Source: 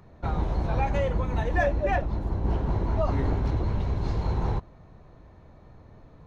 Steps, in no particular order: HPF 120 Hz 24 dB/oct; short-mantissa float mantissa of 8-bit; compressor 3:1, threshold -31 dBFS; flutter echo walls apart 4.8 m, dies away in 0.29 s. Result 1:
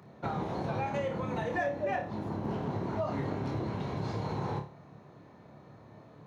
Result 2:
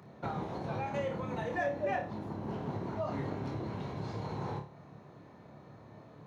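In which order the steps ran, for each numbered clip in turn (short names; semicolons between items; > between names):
flutter echo > short-mantissa float > HPF > compressor; short-mantissa float > flutter echo > compressor > HPF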